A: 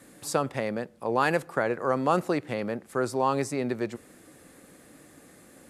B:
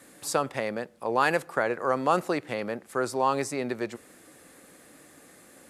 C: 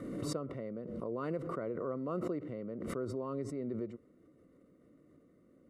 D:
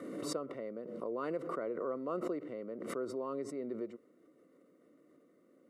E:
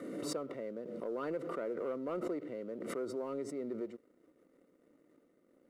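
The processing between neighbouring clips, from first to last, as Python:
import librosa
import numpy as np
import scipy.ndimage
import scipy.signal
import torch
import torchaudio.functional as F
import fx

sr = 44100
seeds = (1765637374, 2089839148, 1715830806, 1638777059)

y1 = fx.low_shelf(x, sr, hz=320.0, db=-8.0)
y1 = y1 * 10.0 ** (2.0 / 20.0)
y2 = np.convolve(y1, np.full(53, 1.0 / 53))[:len(y1)]
y2 = fx.pre_swell(y2, sr, db_per_s=26.0)
y2 = y2 * 10.0 ** (-5.5 / 20.0)
y3 = scipy.signal.sosfilt(scipy.signal.butter(2, 300.0, 'highpass', fs=sr, output='sos'), y2)
y3 = y3 * 10.0 ** (1.5 / 20.0)
y4 = fx.leveller(y3, sr, passes=1)
y4 = fx.notch(y4, sr, hz=1100.0, q=8.0)
y4 = y4 * 10.0 ** (-3.0 / 20.0)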